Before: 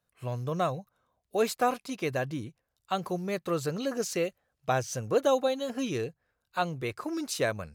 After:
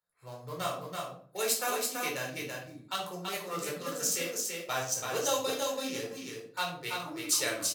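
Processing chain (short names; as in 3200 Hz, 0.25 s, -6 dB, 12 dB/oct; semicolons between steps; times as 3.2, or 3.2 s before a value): Wiener smoothing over 15 samples; pre-emphasis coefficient 0.97; echo 0.332 s -4 dB; shoebox room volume 520 m³, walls furnished, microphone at 4.4 m; gain +7 dB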